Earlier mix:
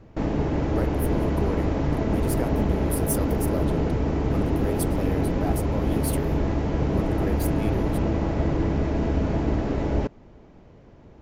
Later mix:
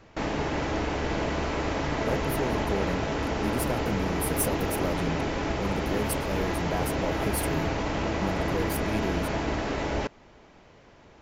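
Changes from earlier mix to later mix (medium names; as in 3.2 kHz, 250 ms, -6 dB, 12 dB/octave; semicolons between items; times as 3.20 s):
speech: entry +1.30 s; background: add tilt shelf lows -8.5 dB, about 660 Hz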